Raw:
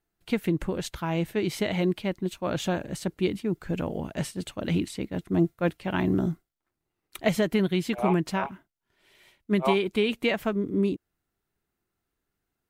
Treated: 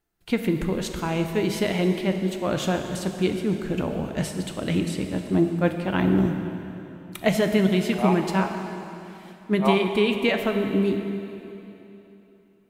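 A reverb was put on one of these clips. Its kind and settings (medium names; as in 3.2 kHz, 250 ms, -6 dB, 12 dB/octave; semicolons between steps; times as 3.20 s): plate-style reverb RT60 3.2 s, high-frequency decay 0.9×, DRR 5 dB; trim +2.5 dB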